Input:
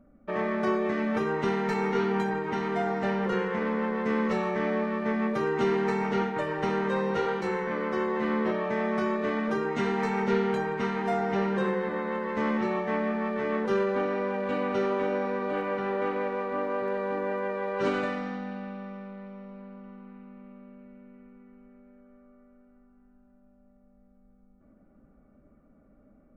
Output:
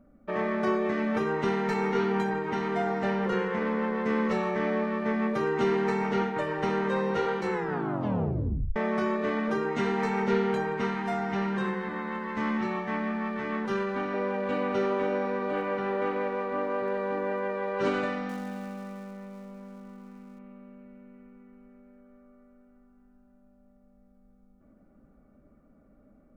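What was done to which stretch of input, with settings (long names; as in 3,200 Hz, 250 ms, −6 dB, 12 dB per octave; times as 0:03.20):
0:07.52: tape stop 1.24 s
0:10.94–0:14.14: parametric band 500 Hz −10.5 dB 0.63 octaves
0:18.29–0:20.39: gap after every zero crossing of 0.098 ms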